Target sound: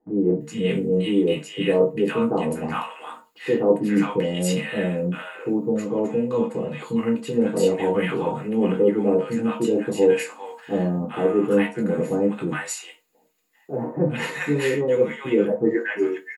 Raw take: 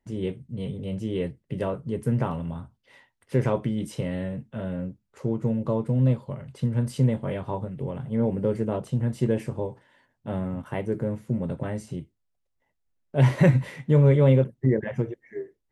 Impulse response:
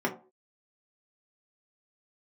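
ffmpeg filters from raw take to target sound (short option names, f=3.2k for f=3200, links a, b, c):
-filter_complex "[0:a]areverse,acompressor=threshold=-33dB:ratio=4,areverse,acrossover=split=920[a][b];[b]adelay=390[c];[a][c]amix=inputs=2:normalize=0,crystalizer=i=9:c=0[d];[1:a]atrim=start_sample=2205,asetrate=57330,aresample=44100[e];[d][e]afir=irnorm=-1:irlink=0,asetrate=42336,aresample=44100,volume=4dB"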